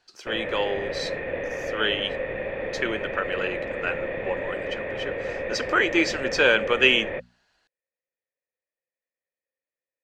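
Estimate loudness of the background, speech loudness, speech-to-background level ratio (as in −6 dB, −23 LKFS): −31.0 LKFS, −25.0 LKFS, 6.0 dB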